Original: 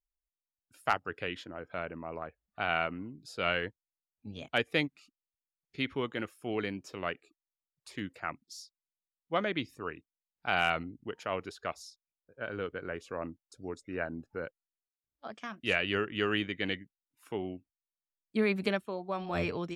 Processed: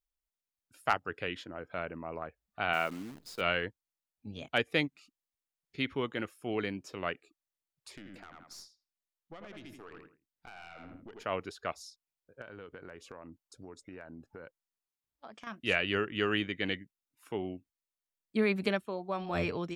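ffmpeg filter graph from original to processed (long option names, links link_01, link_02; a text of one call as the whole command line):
ffmpeg -i in.wav -filter_complex "[0:a]asettb=1/sr,asplit=3[link_01][link_02][link_03];[link_01]atrim=end=2.734[link_04];[link_02]atrim=start=2.73:end=3.41,asetpts=PTS-STARTPTS,afade=type=in:duration=0.004:curve=qsin,afade=type=out:start_time=0.676:duration=0.004:curve=qsin,highpass=150,acrusher=bits=9:dc=4:mix=0:aa=0.000001[link_05];[link_03]atrim=start=3.406[link_06];[link_04][link_05]acrossfade=duration=0.004:curve1=hsin:curve2=qsin[link_07];[link_07][link_06]acrossfade=duration=0.004:curve1=qsin:curve2=hsin,asettb=1/sr,asplit=3[link_08][link_09][link_10];[link_08]atrim=end=7.974[link_11];[link_09]atrim=start=7.97:end=11.24,asetpts=PTS-STARTPTS,afade=type=in:duration=0.004:curve=qsin,afade=type=out:start_time=3.266:duration=0.004:curve=qsin,asplit=2[link_12][link_13];[link_13]adelay=82,lowpass=frequency=2700:poles=1,volume=-7dB,asplit=2[link_14][link_15];[link_15]adelay=82,lowpass=frequency=2700:poles=1,volume=0.27,asplit=2[link_16][link_17];[link_17]adelay=82,lowpass=frequency=2700:poles=1,volume=0.27[link_18];[link_12][link_14][link_16][link_18]amix=inputs=4:normalize=0,atrim=end_sample=144207,acompressor=threshold=-40dB:ratio=16:attack=3.2:release=140:knee=1:detection=peak,aeval=exprs='(tanh(100*val(0)+0.5)-tanh(0.5))/100':channel_layout=same[link_19];[link_10]atrim=start=11.236[link_20];[link_11][link_19]acrossfade=duration=0.004:curve1=hsin:curve2=qsin[link_21];[link_21][link_20]acrossfade=duration=0.004:curve1=qsin:curve2=hsin,asettb=1/sr,asplit=3[link_22][link_23][link_24];[link_22]atrim=end=12.414[link_25];[link_23]atrim=start=12.41:end=15.47,asetpts=PTS-STARTPTS,afade=type=in:duration=0.004:curve=qsin,afade=type=out:start_time=3.056:duration=0.004:curve=qsin,equalizer=frequency=940:width_type=o:width=0.38:gain=4.5,acompressor=threshold=-43dB:ratio=8:attack=3.2:release=140:knee=1:detection=peak,aeval=exprs='0.0211*(abs(mod(val(0)/0.0211+3,4)-2)-1)':channel_layout=same[link_26];[link_24]atrim=start=15.466[link_27];[link_25][link_26]acrossfade=duration=0.004:curve1=hsin:curve2=qsin[link_28];[link_28][link_27]acrossfade=duration=0.004:curve1=qsin:curve2=hsin" out.wav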